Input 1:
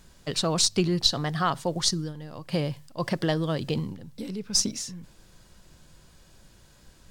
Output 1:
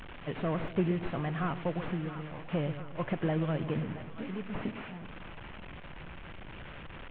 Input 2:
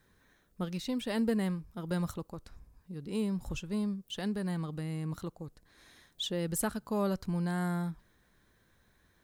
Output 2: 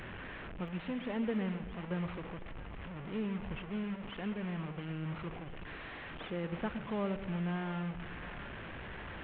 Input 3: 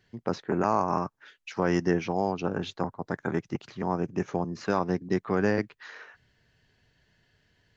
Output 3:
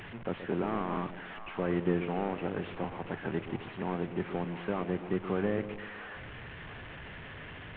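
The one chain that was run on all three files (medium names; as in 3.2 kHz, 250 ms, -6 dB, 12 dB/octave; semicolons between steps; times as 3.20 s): one-bit delta coder 16 kbps, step -34.5 dBFS; two-band feedback delay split 710 Hz, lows 126 ms, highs 680 ms, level -11 dB; trim -4.5 dB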